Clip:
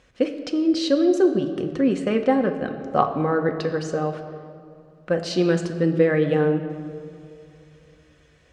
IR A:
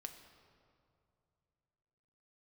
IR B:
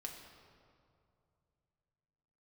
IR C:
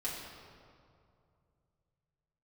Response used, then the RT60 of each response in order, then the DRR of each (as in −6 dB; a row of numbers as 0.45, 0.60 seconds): A; 2.6, 2.5, 2.5 seconds; 5.0, 0.0, −7.5 decibels